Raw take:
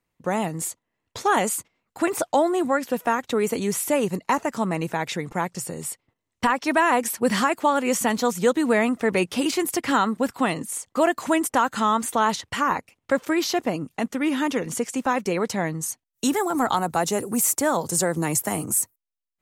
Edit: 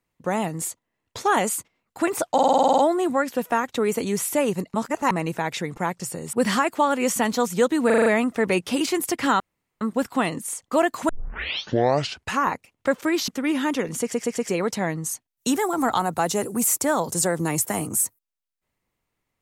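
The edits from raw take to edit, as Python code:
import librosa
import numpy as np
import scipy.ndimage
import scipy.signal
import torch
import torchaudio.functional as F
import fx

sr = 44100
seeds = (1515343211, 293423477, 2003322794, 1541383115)

y = fx.edit(x, sr, fx.stutter(start_s=2.33, slice_s=0.05, count=10),
    fx.reverse_span(start_s=4.29, length_s=0.37),
    fx.cut(start_s=5.88, length_s=1.3),
    fx.stutter(start_s=8.71, slice_s=0.04, count=6),
    fx.insert_room_tone(at_s=10.05, length_s=0.41),
    fx.tape_start(start_s=11.33, length_s=1.34),
    fx.cut(start_s=13.52, length_s=0.53),
    fx.stutter_over(start_s=14.78, slice_s=0.12, count=4), tone=tone)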